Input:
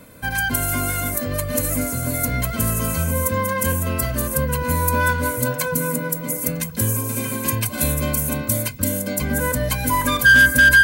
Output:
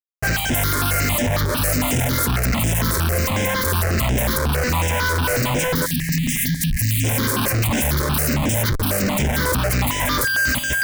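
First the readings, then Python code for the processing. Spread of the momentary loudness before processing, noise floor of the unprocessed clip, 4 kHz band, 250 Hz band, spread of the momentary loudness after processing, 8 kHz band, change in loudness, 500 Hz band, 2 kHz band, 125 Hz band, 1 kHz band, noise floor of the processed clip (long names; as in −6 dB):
7 LU, −30 dBFS, +4.0 dB, +2.0 dB, 1 LU, +0.5 dB, +0.5 dB, +1.0 dB, −5.5 dB, +3.0 dB, +0.5 dB, −24 dBFS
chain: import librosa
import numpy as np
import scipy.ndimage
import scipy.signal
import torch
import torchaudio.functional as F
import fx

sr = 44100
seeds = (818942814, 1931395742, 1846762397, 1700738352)

y = fx.vibrato(x, sr, rate_hz=1.6, depth_cents=5.9)
y = fx.schmitt(y, sr, flips_db=-31.5)
y = fx.spec_erase(y, sr, start_s=5.86, length_s=1.18, low_hz=280.0, high_hz=1600.0)
y = fx.phaser_held(y, sr, hz=11.0, low_hz=740.0, high_hz=4300.0)
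y = y * 10.0 ** (3.0 / 20.0)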